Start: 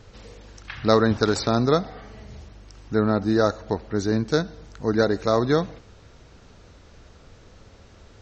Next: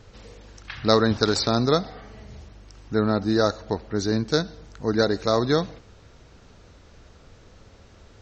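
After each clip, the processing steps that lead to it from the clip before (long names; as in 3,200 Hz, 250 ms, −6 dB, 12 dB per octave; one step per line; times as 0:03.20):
dynamic equaliser 4,500 Hz, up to +7 dB, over −47 dBFS, Q 1.5
level −1 dB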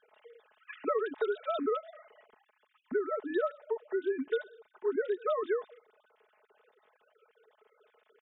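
three sine waves on the formant tracks
comb filter 4.7 ms, depth 85%
downward compressor 6 to 1, threshold −20 dBFS, peak gain reduction 10.5 dB
level −7.5 dB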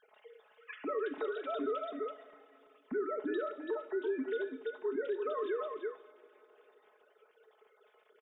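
single-tap delay 333 ms −8.5 dB
brickwall limiter −28.5 dBFS, peak gain reduction 8.5 dB
coupled-rooms reverb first 0.49 s, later 3.9 s, from −18 dB, DRR 9.5 dB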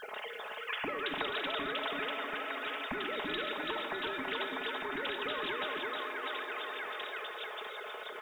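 on a send: echo through a band-pass that steps 648 ms, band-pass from 1,200 Hz, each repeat 0.7 octaves, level −2.5 dB
on the sum: every bin compressed towards the loudest bin 4 to 1
level +4 dB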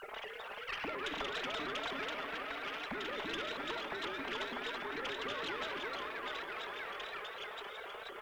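tube saturation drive 29 dB, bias 0.65
pitch modulation by a square or saw wave saw up 4.2 Hz, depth 160 cents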